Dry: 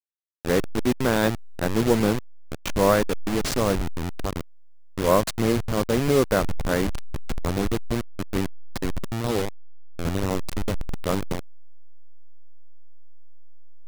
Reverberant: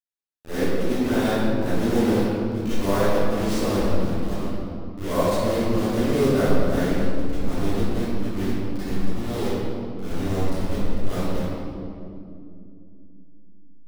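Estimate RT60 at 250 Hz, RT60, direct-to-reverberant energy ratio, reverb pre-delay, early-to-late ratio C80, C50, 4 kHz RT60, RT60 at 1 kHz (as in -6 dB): 4.6 s, 2.6 s, -15.0 dB, 31 ms, -3.0 dB, -7.5 dB, 1.5 s, 2.1 s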